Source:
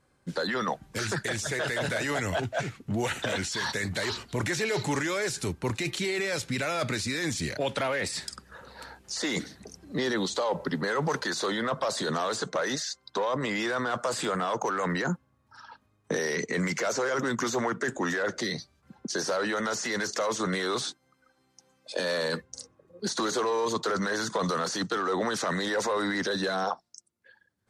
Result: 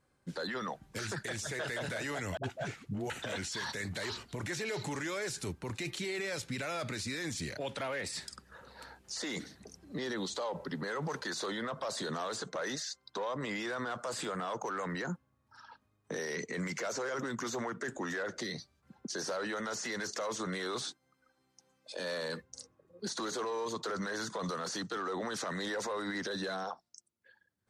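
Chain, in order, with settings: limiter -23 dBFS, peak gain reduction 6 dB; 2.37–3.1 dispersion highs, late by 66 ms, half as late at 380 Hz; gain -6 dB

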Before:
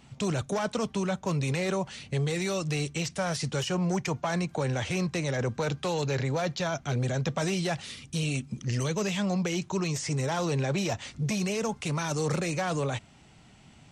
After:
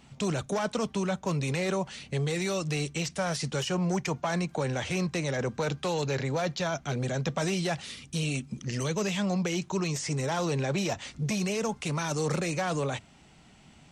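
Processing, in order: bell 110 Hz -13.5 dB 0.22 oct

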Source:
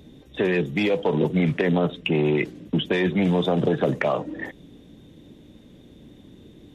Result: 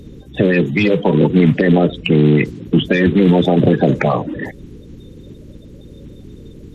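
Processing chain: bin magnitudes rounded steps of 30 dB; low shelf 220 Hz +10 dB; Doppler distortion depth 0.1 ms; gain +6 dB

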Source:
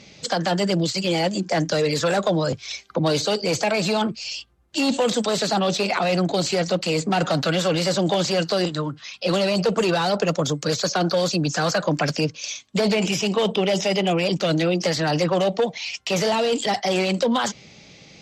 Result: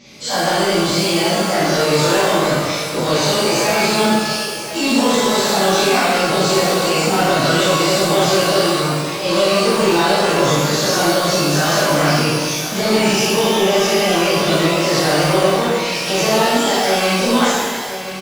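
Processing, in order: spectral dilation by 60 ms; soft clip -10.5 dBFS, distortion -20 dB; on a send: echo 1.027 s -12 dB; on the sum: shimmer reverb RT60 1.3 s, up +12 st, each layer -8 dB, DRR -10.5 dB; gain -7.5 dB

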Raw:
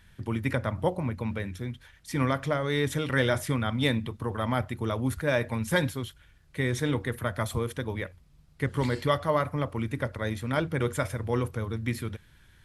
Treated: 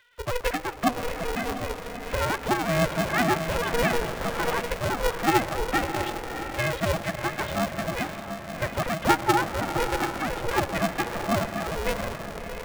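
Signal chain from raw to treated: sine-wave speech; in parallel at -1 dB: compressor, threshold -33 dBFS, peak gain reduction 16.5 dB; on the sum: diffused feedback echo 0.666 s, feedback 42%, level -7 dB; on a send at -16 dB: reverb RT60 2.2 s, pre-delay 0.13 s; on the sum: polarity switched at an audio rate 240 Hz; gain -1 dB

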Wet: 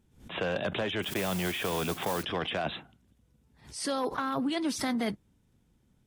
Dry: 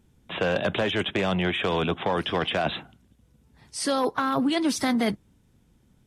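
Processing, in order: 1.02–2.23 modulation noise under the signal 10 dB; backwards sustainer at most 120 dB/s; gain -6.5 dB

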